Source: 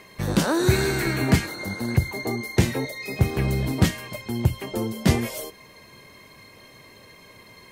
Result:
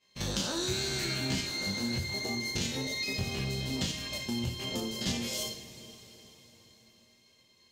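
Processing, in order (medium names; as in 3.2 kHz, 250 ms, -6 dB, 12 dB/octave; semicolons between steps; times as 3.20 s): spectrogram pixelated in time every 50 ms; expander -36 dBFS; high-order bell 4.5 kHz +13 dB; in parallel at -9 dB: saturation -17 dBFS, distortion -12 dB; on the sum: compression 4:1, threshold -27 dBFS, peak gain reduction 12.5 dB; two-slope reverb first 0.34 s, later 4.7 s, from -18 dB, DRR 2.5 dB; trim -6 dB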